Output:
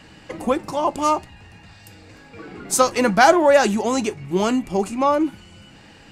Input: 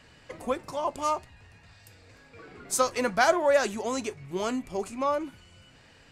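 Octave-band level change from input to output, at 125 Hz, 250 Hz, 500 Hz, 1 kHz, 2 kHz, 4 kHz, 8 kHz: +12.5 dB, +12.5 dB, +8.0 dB, +9.5 dB, +7.5 dB, +8.0 dB, +7.5 dB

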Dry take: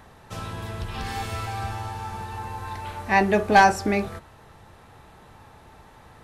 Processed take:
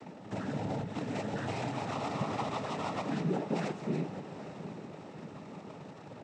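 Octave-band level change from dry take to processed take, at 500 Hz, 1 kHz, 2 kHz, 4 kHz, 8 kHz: -9.5 dB, -15.0 dB, -18.0 dB, -9.5 dB, -12.5 dB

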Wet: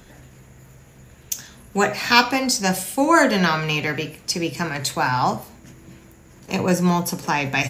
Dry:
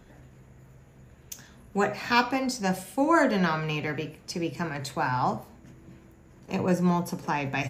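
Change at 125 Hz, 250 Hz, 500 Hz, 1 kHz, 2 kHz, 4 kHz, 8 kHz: +5.0 dB, +5.0 dB, +5.5 dB, +6.5 dB, +8.5 dB, +12.0 dB, +14.0 dB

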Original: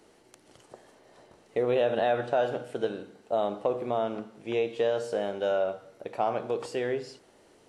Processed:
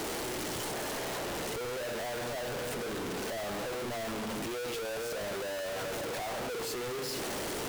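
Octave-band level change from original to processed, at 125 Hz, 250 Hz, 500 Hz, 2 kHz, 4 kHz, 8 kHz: -0.5 dB, -2.5 dB, -7.5 dB, +1.5 dB, +5.5 dB, no reading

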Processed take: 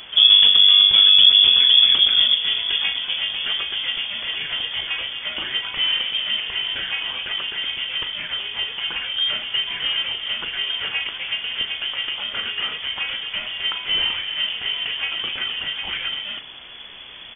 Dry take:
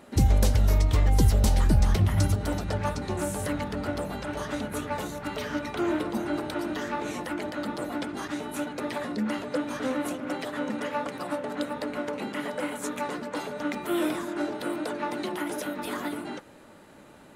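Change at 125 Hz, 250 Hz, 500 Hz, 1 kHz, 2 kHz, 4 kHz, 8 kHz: -22.5 dB, -19.0 dB, -12.5 dB, -4.5 dB, +10.5 dB, +28.5 dB, under -40 dB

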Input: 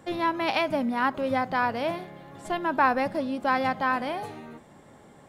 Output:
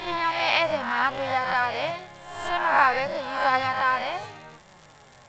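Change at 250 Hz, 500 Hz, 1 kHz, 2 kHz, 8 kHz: -9.5 dB, 0.0 dB, +2.5 dB, +5.0 dB, no reading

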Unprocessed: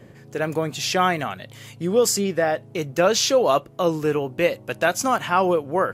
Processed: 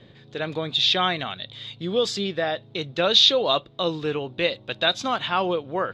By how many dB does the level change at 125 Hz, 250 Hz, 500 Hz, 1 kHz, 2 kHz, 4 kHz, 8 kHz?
-4.5 dB, -4.5 dB, -5.0 dB, -4.5 dB, -2.0 dB, +8.5 dB, -12.5 dB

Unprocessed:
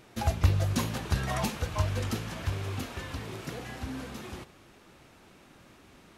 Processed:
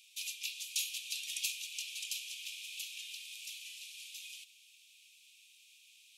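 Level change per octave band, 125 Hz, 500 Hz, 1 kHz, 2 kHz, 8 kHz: under -40 dB, under -40 dB, under -40 dB, -5.0 dB, +3.0 dB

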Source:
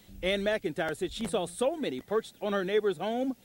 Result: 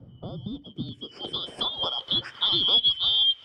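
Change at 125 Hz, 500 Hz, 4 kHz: +3.0 dB, -13.5 dB, +20.0 dB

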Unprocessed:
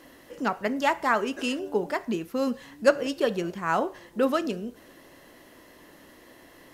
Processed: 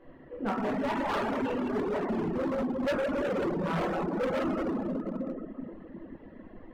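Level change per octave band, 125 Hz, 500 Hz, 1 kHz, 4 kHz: +4.0 dB, -3.5 dB, -5.0 dB, -8.0 dB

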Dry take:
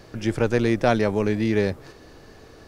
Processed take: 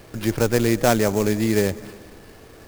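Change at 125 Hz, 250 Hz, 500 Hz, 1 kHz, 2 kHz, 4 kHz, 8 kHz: +1.5 dB, +1.5 dB, +1.5 dB, +1.5 dB, +1.0 dB, +5.0 dB, +14.5 dB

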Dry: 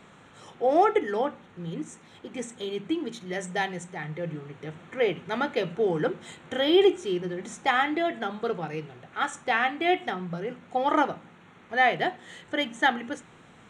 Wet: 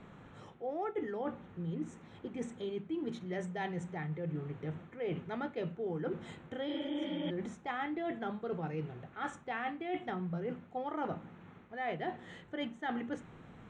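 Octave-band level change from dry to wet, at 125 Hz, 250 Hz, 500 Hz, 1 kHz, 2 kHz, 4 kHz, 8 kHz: -2.5 dB, -7.5 dB, -12.5 dB, -13.5 dB, -15.0 dB, -16.0 dB, under -15 dB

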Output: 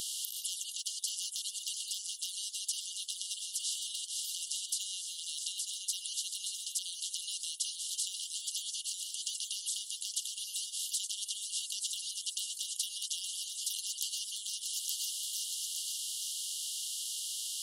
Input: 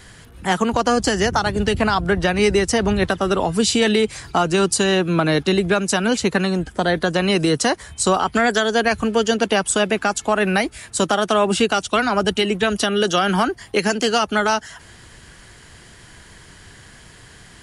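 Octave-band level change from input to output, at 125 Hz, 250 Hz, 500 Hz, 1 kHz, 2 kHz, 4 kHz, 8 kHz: under -40 dB, under -40 dB, under -40 dB, under -40 dB, -33.5 dB, -10.5 dB, -5.5 dB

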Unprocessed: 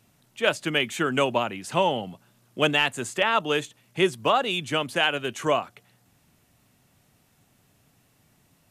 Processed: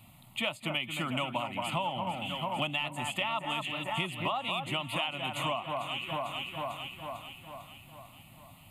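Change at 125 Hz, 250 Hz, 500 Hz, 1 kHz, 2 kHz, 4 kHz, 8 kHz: -3.5 dB, -8.0 dB, -12.0 dB, -6.0 dB, -8.0 dB, -5.5 dB, -9.0 dB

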